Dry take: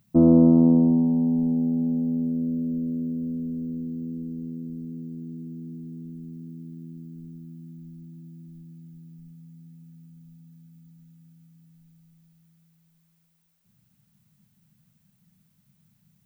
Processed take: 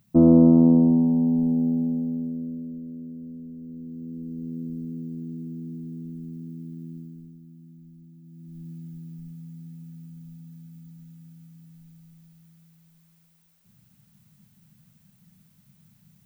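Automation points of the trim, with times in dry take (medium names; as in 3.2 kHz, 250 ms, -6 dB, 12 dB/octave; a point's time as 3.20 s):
1.70 s +1 dB
2.82 s -9 dB
3.58 s -9 dB
4.60 s +2 dB
6.96 s +2 dB
7.38 s -5.5 dB
8.21 s -5.5 dB
8.66 s +6 dB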